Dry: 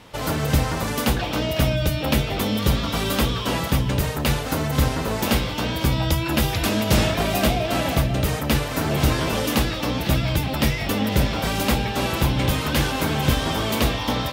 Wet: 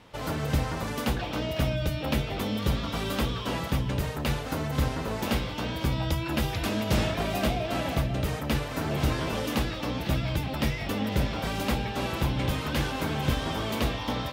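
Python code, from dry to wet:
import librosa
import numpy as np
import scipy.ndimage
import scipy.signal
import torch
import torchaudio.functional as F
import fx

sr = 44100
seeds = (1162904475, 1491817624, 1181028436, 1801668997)

y = fx.high_shelf(x, sr, hz=5700.0, db=-6.5)
y = F.gain(torch.from_numpy(y), -6.5).numpy()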